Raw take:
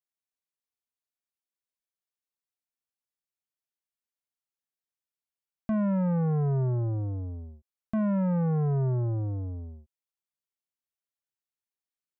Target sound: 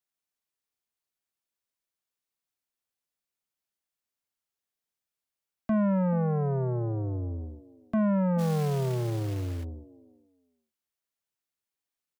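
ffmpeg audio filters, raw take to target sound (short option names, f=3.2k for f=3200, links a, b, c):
-filter_complex "[0:a]acrossover=split=210|710[a][b][c];[a]alimiter=level_in=9dB:limit=-24dB:level=0:latency=1:release=309,volume=-9dB[d];[b]aecho=1:1:431|862:0.299|0.0537[e];[d][e][c]amix=inputs=3:normalize=0,asplit=3[f][g][h];[f]afade=t=out:st=8.38:d=0.02[i];[g]acrusher=bits=4:mode=log:mix=0:aa=0.000001,afade=t=in:st=8.38:d=0.02,afade=t=out:st=9.63:d=0.02[j];[h]afade=t=in:st=9.63:d=0.02[k];[i][j][k]amix=inputs=3:normalize=0,volume=3.5dB"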